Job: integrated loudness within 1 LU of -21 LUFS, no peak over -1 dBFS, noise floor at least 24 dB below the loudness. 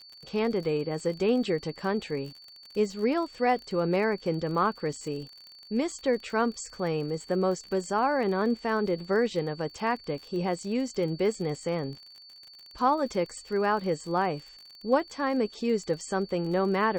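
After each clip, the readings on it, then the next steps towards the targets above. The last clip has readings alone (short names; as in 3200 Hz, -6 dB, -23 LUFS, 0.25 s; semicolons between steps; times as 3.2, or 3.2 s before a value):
ticks 45/s; steady tone 4500 Hz; tone level -48 dBFS; loudness -29.0 LUFS; peak -11.0 dBFS; loudness target -21.0 LUFS
-> de-click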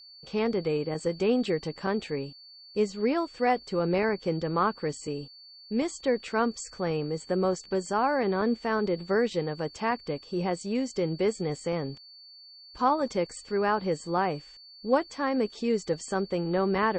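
ticks 0.059/s; steady tone 4500 Hz; tone level -48 dBFS
-> notch 4500 Hz, Q 30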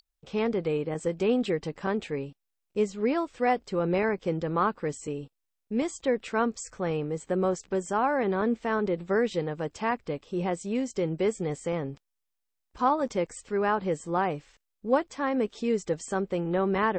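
steady tone none; loudness -29.0 LUFS; peak -11.0 dBFS; loudness target -21.0 LUFS
-> gain +8 dB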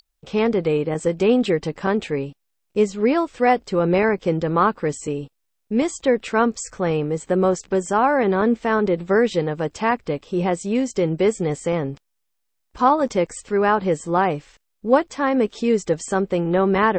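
loudness -21.0 LUFS; peak -3.0 dBFS; noise floor -73 dBFS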